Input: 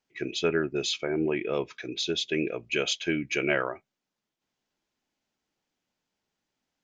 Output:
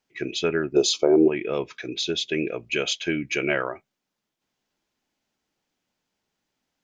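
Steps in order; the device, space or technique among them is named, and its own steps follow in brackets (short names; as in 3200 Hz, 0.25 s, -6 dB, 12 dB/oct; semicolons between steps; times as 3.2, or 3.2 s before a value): 0.76–1.28 EQ curve 160 Hz 0 dB, 390 Hz +12 dB, 1100 Hz +8 dB, 1800 Hz -13 dB, 4600 Hz +8 dB; parallel compression (in parallel at -6 dB: compressor, threshold -28 dBFS, peak gain reduction 13.5 dB)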